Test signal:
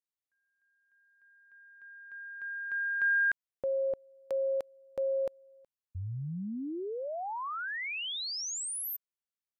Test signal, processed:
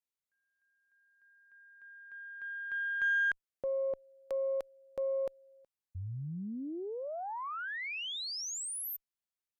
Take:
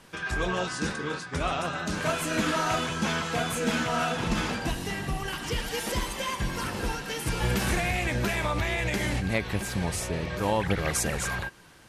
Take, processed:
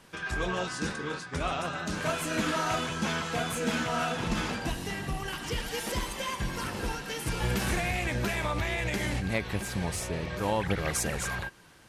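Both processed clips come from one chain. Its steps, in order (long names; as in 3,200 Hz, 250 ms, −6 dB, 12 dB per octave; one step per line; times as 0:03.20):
harmonic generator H 8 −35 dB, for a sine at −13.5 dBFS
level −2.5 dB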